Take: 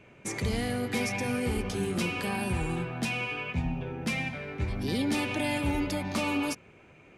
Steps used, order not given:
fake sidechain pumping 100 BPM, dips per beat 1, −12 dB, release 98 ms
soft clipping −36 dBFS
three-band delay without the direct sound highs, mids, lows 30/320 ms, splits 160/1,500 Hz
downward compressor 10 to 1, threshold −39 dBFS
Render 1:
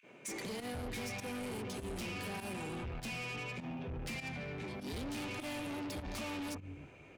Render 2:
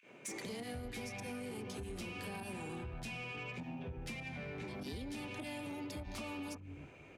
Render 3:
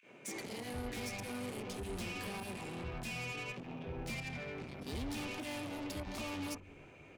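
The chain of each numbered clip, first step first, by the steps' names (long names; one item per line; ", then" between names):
three-band delay without the direct sound, then soft clipping, then fake sidechain pumping, then downward compressor
fake sidechain pumping, then three-band delay without the direct sound, then downward compressor, then soft clipping
soft clipping, then fake sidechain pumping, then downward compressor, then three-band delay without the direct sound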